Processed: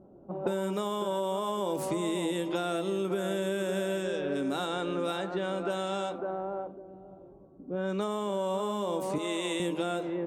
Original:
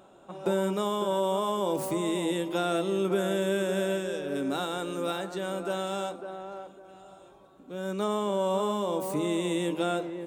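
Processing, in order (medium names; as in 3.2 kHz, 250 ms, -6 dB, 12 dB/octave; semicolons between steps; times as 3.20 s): level-controlled noise filter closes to 310 Hz, open at -25.5 dBFS; 9.18–9.60 s: frequency weighting A; compression 5:1, threshold -35 dBFS, peak gain reduction 12 dB; trim +6.5 dB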